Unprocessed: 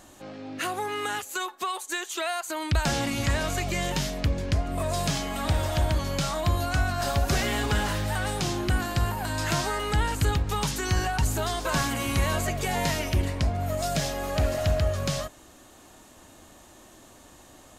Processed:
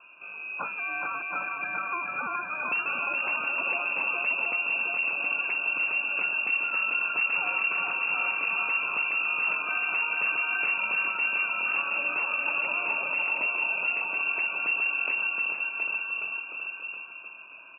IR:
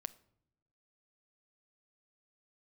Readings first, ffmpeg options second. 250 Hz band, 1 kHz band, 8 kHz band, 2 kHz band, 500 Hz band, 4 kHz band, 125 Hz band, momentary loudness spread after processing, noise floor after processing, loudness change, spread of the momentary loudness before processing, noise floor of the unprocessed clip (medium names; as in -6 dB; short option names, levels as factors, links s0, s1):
-18.0 dB, -3.5 dB, under -40 dB, +8.5 dB, -12.5 dB, no reading, under -30 dB, 7 LU, -43 dBFS, +1.0 dB, 5 LU, -52 dBFS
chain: -filter_complex "[0:a]asuperstop=centerf=760:order=20:qfactor=1,asplit=2[s0][s1];[s1]aecho=0:1:420|798|1138|1444|1720:0.631|0.398|0.251|0.158|0.1[s2];[s0][s2]amix=inputs=2:normalize=0,aeval=exprs='0.119*(abs(mod(val(0)/0.119+3,4)-2)-1)':c=same,lowpass=f=2400:t=q:w=0.5098,lowpass=f=2400:t=q:w=0.6013,lowpass=f=2400:t=q:w=0.9,lowpass=f=2400:t=q:w=2.563,afreqshift=-2800,acompressor=threshold=0.0282:ratio=2.5,highpass=f=160:w=0.5412,highpass=f=160:w=1.3066,asplit=2[s3][s4];[s4]aecho=0:1:722:0.596[s5];[s3][s5]amix=inputs=2:normalize=0,volume=1.26"